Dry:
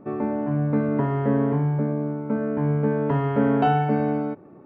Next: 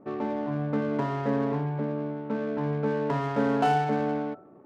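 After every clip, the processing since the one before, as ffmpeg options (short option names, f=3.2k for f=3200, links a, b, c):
-af "adynamicsmooth=sensitivity=5.5:basefreq=1.1k,lowshelf=f=300:g=-10,bandreject=f=82.82:t=h:w=4,bandreject=f=165.64:t=h:w=4,bandreject=f=248.46:t=h:w=4,bandreject=f=331.28:t=h:w=4,bandreject=f=414.1:t=h:w=4,bandreject=f=496.92:t=h:w=4,bandreject=f=579.74:t=h:w=4,bandreject=f=662.56:t=h:w=4,bandreject=f=745.38:t=h:w=4,bandreject=f=828.2:t=h:w=4,bandreject=f=911.02:t=h:w=4,bandreject=f=993.84:t=h:w=4,bandreject=f=1.07666k:t=h:w=4,bandreject=f=1.15948k:t=h:w=4,bandreject=f=1.2423k:t=h:w=4,bandreject=f=1.32512k:t=h:w=4,bandreject=f=1.40794k:t=h:w=4,bandreject=f=1.49076k:t=h:w=4"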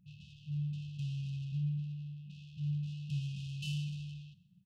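-af "afftfilt=real='re*(1-between(b*sr/4096,200,2500))':imag='im*(1-between(b*sr/4096,200,2500))':win_size=4096:overlap=0.75,aecho=1:1:133|266|399:0.112|0.046|0.0189,volume=-2.5dB"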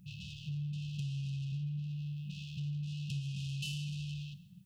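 -af "highshelf=f=5k:g=6,bandreject=f=50:t=h:w=6,bandreject=f=100:t=h:w=6,bandreject=f=150:t=h:w=6,acompressor=threshold=-47dB:ratio=4,volume=9.5dB"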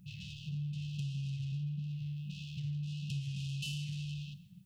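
-af "flanger=delay=1.6:depth=5.9:regen=-87:speed=1.6:shape=sinusoidal,volume=4.5dB"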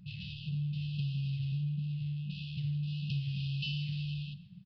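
-af "aresample=11025,aresample=44100,volume=3.5dB"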